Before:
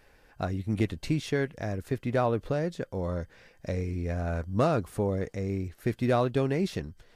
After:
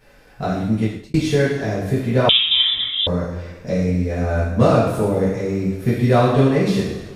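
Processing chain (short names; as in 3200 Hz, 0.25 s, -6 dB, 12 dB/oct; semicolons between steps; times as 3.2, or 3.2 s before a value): two-slope reverb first 0.92 s, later 2.8 s, from -19 dB, DRR -10 dB; 0.62–1.14 fade out; 2.29–3.07 inverted band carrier 3700 Hz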